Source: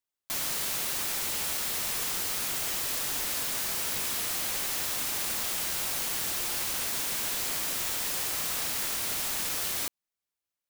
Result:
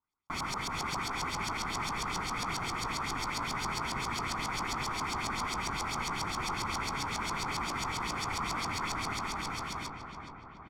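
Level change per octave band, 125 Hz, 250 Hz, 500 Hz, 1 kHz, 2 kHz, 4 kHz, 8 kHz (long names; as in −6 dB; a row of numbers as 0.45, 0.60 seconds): +8.0, +5.5, −1.0, +8.0, +0.5, −4.5, −11.0 decibels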